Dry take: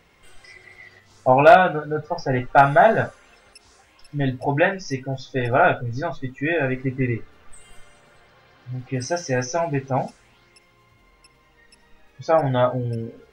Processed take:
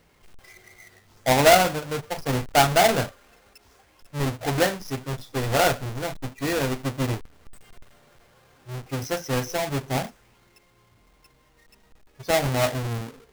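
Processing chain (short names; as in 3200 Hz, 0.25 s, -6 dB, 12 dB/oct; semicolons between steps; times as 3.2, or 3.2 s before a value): half-waves squared off; gain -7.5 dB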